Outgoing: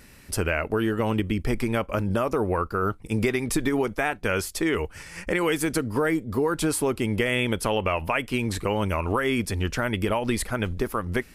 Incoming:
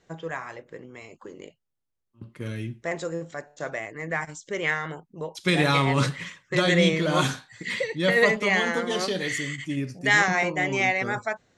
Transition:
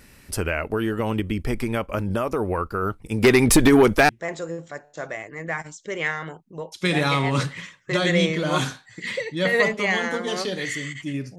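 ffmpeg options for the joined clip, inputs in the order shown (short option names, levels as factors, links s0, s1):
-filter_complex "[0:a]asplit=3[s0][s1][s2];[s0]afade=t=out:st=3.23:d=0.02[s3];[s1]aeval=exprs='0.376*sin(PI/2*2.51*val(0)/0.376)':c=same,afade=t=in:st=3.23:d=0.02,afade=t=out:st=4.09:d=0.02[s4];[s2]afade=t=in:st=4.09:d=0.02[s5];[s3][s4][s5]amix=inputs=3:normalize=0,apad=whole_dur=11.38,atrim=end=11.38,atrim=end=4.092[s6];[1:a]atrim=start=2.718:end=10.01[s7];[s6][s7]acrossfade=d=0.004:c1=hsin:c2=hsin"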